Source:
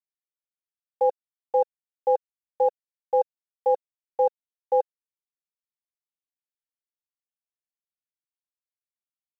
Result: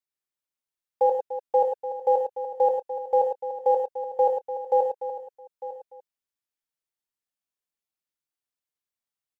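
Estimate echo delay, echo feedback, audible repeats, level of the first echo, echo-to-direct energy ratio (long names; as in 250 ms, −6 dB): 50 ms, repeats not evenly spaced, 7, −10.5 dB, −2.5 dB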